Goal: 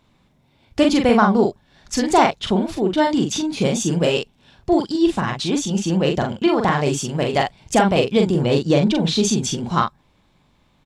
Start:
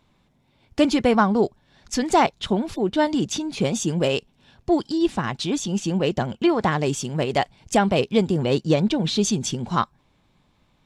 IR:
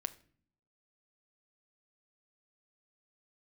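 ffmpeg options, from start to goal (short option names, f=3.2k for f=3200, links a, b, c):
-filter_complex "[0:a]asplit=2[a][b];[b]adelay=42,volume=-4dB[c];[a][c]amix=inputs=2:normalize=0,volume=2dB"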